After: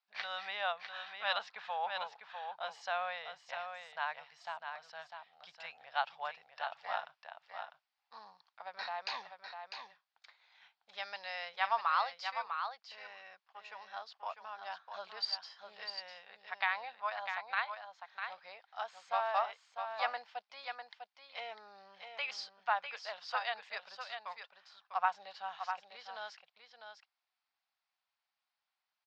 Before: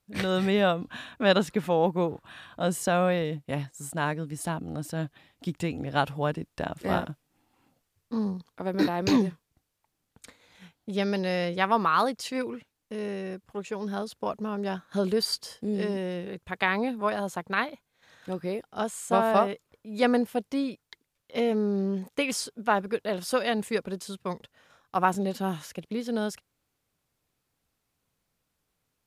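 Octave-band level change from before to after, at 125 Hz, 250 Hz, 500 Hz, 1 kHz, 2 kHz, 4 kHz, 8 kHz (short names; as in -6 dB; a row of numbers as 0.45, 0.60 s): under -40 dB, under -40 dB, -18.0 dB, -6.5 dB, -6.0 dB, -6.5 dB, under -20 dB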